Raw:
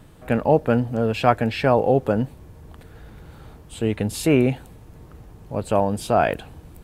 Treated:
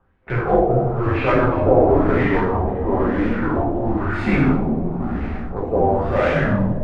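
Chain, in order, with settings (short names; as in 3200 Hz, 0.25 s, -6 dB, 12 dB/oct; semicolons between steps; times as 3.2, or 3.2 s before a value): gate with hold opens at -32 dBFS; in parallel at -9 dB: wrapped overs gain 13 dB; on the sum: frequency shift -110 Hz; plate-style reverb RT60 1.4 s, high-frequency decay 0.95×, DRR -6 dB; echoes that change speed 0.642 s, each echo -5 st, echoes 2; LFO low-pass sine 0.99 Hz 660–2100 Hz; reverse; upward compressor, threshold -11 dBFS; reverse; gain -7.5 dB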